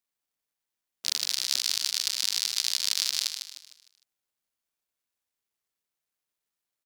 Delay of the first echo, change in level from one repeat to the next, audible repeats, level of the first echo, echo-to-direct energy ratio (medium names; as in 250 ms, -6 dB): 152 ms, -8.0 dB, 4, -7.5 dB, -6.5 dB